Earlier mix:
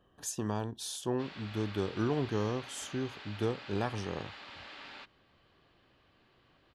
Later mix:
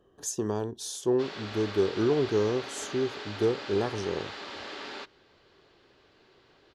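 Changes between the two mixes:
background +8.0 dB; master: add fifteen-band EQ 400 Hz +11 dB, 2500 Hz -4 dB, 6300 Hz +6 dB

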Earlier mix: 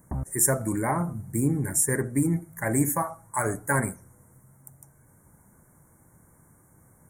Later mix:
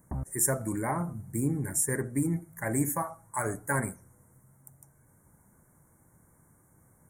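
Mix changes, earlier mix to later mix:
speech -4.5 dB; background -3.5 dB

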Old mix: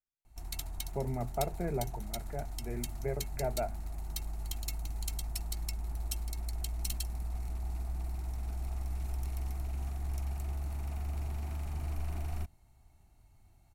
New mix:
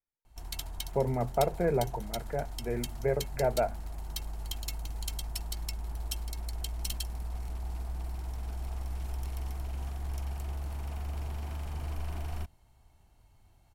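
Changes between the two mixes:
speech +4.0 dB; master: add thirty-one-band EQ 500 Hz +10 dB, 1000 Hz +6 dB, 1600 Hz +5 dB, 3150 Hz +8 dB, 5000 Hz +4 dB

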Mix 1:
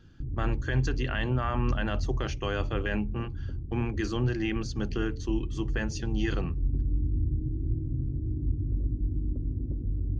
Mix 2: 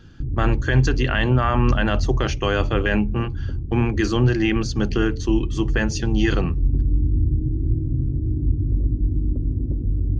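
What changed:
speech +10.0 dB; background +8.5 dB

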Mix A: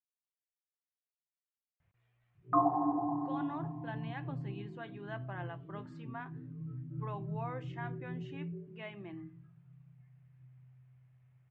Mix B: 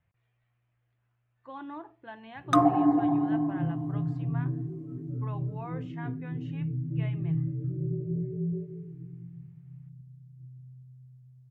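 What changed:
speech: entry -1.80 s; background: remove ladder low-pass 1100 Hz, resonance 65%

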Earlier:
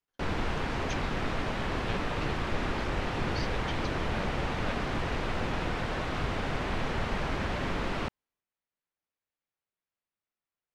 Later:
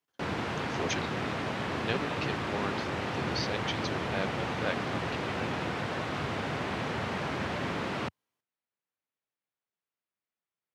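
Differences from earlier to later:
speech +7.5 dB; master: add HPF 93 Hz 24 dB/oct

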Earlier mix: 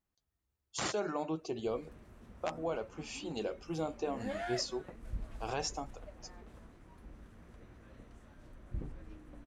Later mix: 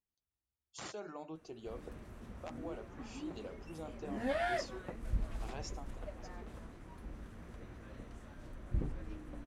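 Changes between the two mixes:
speech -10.5 dB; background +5.0 dB

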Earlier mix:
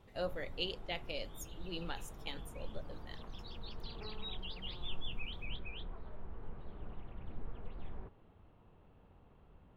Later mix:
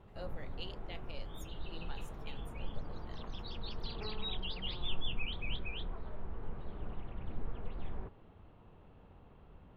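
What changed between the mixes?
speech -8.5 dB; background +4.5 dB

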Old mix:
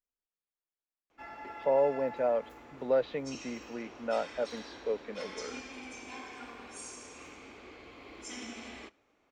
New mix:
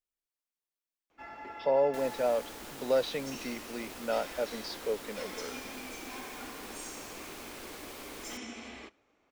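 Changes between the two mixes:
speech: remove LPF 2000 Hz; second sound: unmuted

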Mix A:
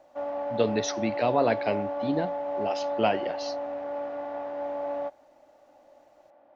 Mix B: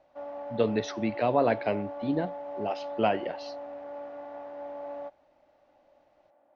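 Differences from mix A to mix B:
speech: add air absorption 190 m; background -7.0 dB

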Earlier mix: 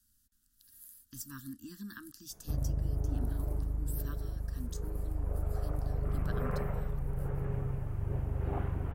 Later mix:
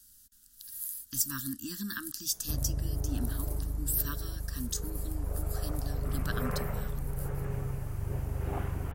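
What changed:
speech +6.0 dB; master: add high shelf 2000 Hz +9.5 dB

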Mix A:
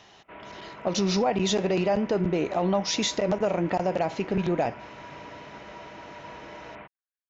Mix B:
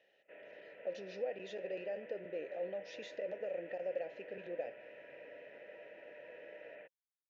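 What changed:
speech -7.0 dB; first sound: send +7.0 dB; master: add vowel filter e

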